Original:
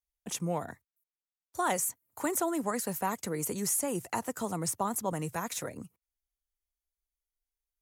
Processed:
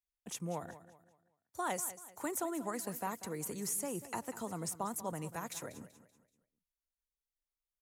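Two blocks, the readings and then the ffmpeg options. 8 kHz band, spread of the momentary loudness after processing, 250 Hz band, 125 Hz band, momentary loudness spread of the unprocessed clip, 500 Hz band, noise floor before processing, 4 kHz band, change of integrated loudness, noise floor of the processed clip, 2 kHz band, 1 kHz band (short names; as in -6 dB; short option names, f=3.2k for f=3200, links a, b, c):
-7.0 dB, 11 LU, -7.0 dB, -7.0 dB, 9 LU, -7.0 dB, under -85 dBFS, -7.0 dB, -7.0 dB, under -85 dBFS, -7.0 dB, -7.0 dB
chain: -af "aecho=1:1:191|382|573|764:0.188|0.0716|0.0272|0.0103,volume=-7dB"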